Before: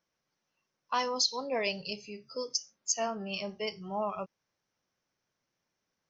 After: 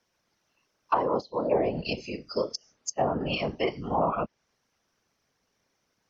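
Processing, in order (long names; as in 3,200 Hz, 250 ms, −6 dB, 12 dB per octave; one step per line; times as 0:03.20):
random phases in short frames
treble cut that deepens with the level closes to 710 Hz, closed at −27 dBFS
level +8.5 dB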